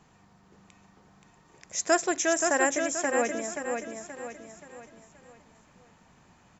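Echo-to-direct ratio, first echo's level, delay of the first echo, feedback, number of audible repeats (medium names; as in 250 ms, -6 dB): -4.0 dB, -5.0 dB, 527 ms, 42%, 4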